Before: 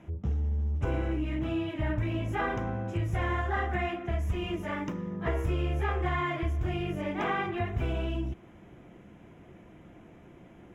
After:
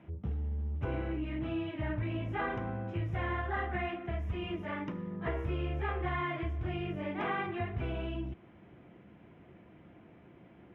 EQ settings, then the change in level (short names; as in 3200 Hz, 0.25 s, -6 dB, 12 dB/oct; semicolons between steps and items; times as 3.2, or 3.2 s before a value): HPF 67 Hz; air absorption 380 m; high shelf 2800 Hz +11 dB; -3.5 dB